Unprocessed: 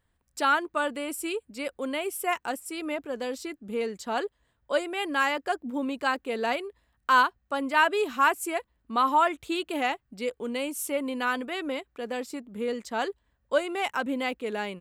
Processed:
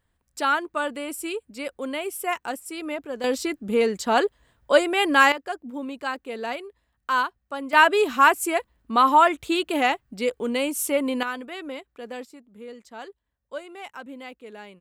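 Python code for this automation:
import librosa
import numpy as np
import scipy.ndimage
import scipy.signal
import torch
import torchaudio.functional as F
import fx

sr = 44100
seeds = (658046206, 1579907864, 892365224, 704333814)

y = fx.gain(x, sr, db=fx.steps((0.0, 1.0), (3.24, 9.0), (5.32, -2.5), (7.73, 6.0), (11.23, -3.0), (12.25, -10.0)))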